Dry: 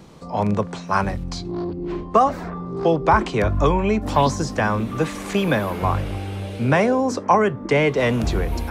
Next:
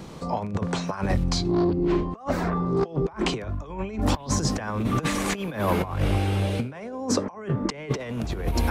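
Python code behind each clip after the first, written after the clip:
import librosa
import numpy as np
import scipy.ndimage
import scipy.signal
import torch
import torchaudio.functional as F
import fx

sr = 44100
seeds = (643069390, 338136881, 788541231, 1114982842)

y = fx.over_compress(x, sr, threshold_db=-25.0, ratio=-0.5)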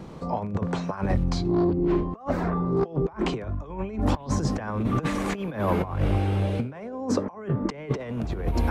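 y = fx.high_shelf(x, sr, hz=2600.0, db=-11.0)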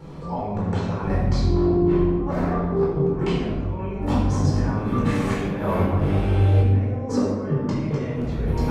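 y = fx.room_shoebox(x, sr, seeds[0], volume_m3=850.0, walls='mixed', distance_m=4.3)
y = y * librosa.db_to_amplitude(-7.0)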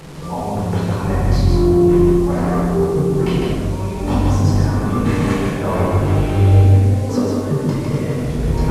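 y = fx.delta_mod(x, sr, bps=64000, step_db=-37.0)
y = y + 10.0 ** (-3.5 / 20.0) * np.pad(y, (int(154 * sr / 1000.0), 0))[:len(y)]
y = y * librosa.db_to_amplitude(3.5)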